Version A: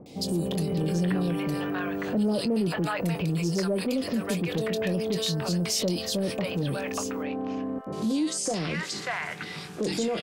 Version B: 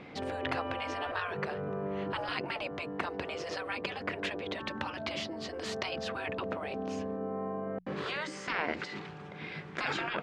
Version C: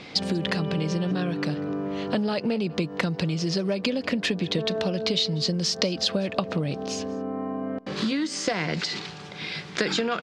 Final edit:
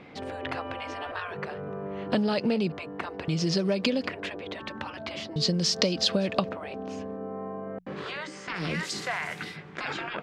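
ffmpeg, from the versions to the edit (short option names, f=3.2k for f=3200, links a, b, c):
-filter_complex "[2:a]asplit=3[a][b][c];[1:a]asplit=5[d][e][f][g][h];[d]atrim=end=2.122[i];[a]atrim=start=2.118:end=2.722[j];[e]atrim=start=2.718:end=3.282[k];[b]atrim=start=3.278:end=4.082[l];[f]atrim=start=4.078:end=5.362[m];[c]atrim=start=5.358:end=6.492[n];[g]atrim=start=6.488:end=8.64[o];[0:a]atrim=start=8.54:end=9.58[p];[h]atrim=start=9.48[q];[i][j]acrossfade=d=0.004:c1=hsin:c2=hsin[r];[r][k]acrossfade=d=0.004:c1=hsin:c2=hsin[s];[s][l]acrossfade=d=0.004:c1=hsin:c2=hsin[t];[t][m]acrossfade=d=0.004:c1=hsin:c2=hsin[u];[u][n]acrossfade=d=0.004:c1=hsin:c2=hsin[v];[v][o]acrossfade=d=0.004:c1=hsin:c2=hsin[w];[w][p]acrossfade=d=0.1:c1=tri:c2=tri[x];[x][q]acrossfade=d=0.1:c1=tri:c2=tri"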